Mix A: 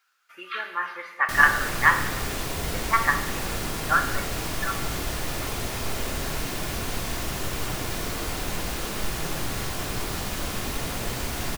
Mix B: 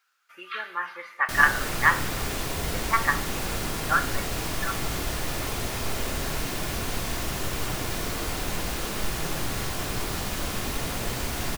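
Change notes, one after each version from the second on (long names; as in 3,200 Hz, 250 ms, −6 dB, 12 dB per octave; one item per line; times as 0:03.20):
speech: send −10.0 dB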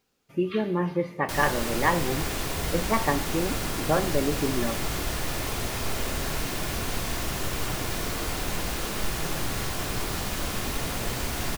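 speech: remove high-pass with resonance 1,400 Hz, resonance Q 4.4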